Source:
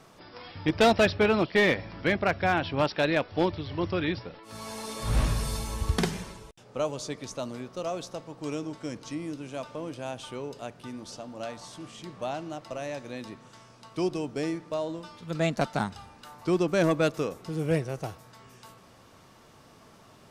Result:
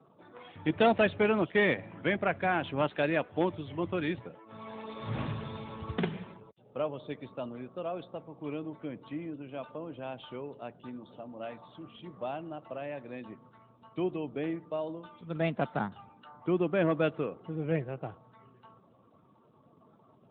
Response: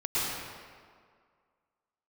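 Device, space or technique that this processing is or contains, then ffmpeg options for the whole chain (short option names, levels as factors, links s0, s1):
mobile call with aggressive noise cancelling: -af "highpass=100,afftdn=nr=28:nf=-52,volume=0.708" -ar 8000 -c:a libopencore_amrnb -b:a 12200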